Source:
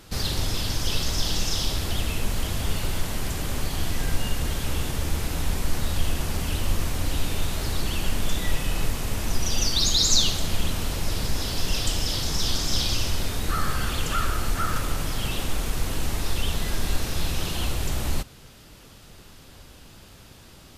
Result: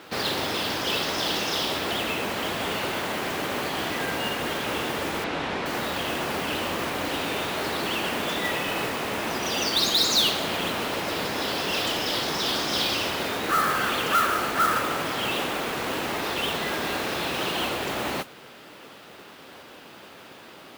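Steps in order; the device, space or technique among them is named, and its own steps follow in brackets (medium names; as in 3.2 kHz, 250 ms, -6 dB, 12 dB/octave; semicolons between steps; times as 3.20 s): carbon microphone (band-pass 330–2900 Hz; saturation -20.5 dBFS, distortion -24 dB; modulation noise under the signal 13 dB); 5.24–5.66 s: low-pass 4.8 kHz 12 dB/octave; trim +8.5 dB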